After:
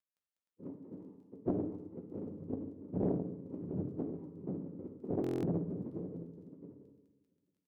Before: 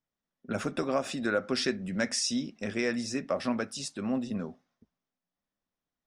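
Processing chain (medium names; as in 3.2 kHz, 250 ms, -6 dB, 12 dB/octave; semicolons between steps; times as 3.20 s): formants replaced by sine waves; recorder AGC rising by 14 dB/s; feedback delay 526 ms, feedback 28%, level -12 dB; tape speed -21%; tremolo 13 Hz, depth 29%; Butterworth band-pass 230 Hz, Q 6.2; gate -56 dBFS, range -18 dB; noise-vocoded speech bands 6; crackle 12 per s -64 dBFS; reverberation RT60 1.1 s, pre-delay 3 ms, DRR 1.5 dB; buffer glitch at 5.22 s, samples 1024, times 8; loudspeaker Doppler distortion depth 0.64 ms; trim -2 dB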